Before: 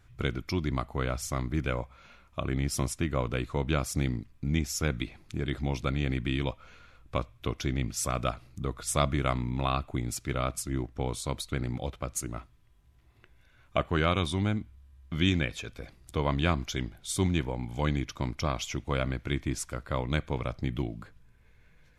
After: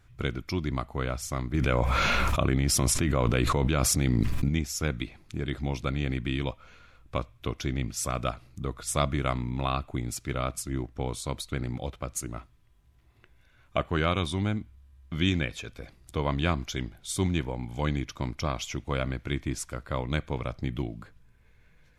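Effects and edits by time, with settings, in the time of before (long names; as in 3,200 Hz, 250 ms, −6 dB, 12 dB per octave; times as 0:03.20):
0:01.54–0:04.49: envelope flattener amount 100%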